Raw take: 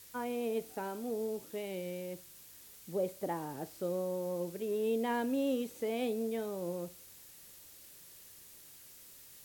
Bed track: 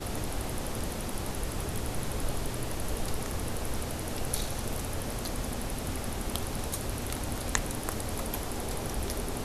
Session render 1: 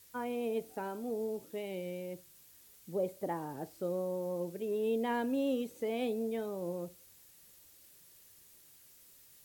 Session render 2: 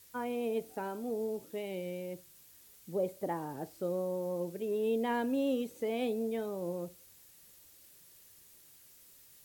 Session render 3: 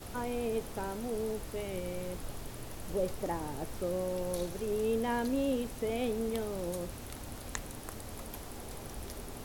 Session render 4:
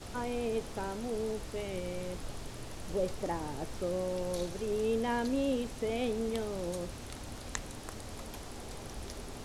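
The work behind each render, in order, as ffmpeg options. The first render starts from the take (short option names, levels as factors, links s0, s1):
-af "afftdn=nr=6:nf=-55"
-af "volume=1.12"
-filter_complex "[1:a]volume=0.316[s0];[0:a][s0]amix=inputs=2:normalize=0"
-af "lowpass=7000,highshelf=f=4500:g=6"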